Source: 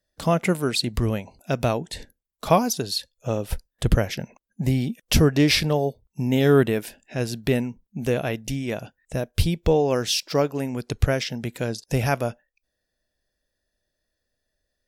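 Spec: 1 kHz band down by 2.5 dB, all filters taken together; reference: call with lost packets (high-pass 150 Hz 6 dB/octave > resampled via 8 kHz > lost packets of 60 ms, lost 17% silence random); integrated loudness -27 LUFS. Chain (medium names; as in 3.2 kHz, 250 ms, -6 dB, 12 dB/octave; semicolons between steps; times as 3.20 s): high-pass 150 Hz 6 dB/octave; peaking EQ 1 kHz -3.5 dB; resampled via 8 kHz; lost packets of 60 ms, lost 17% silence random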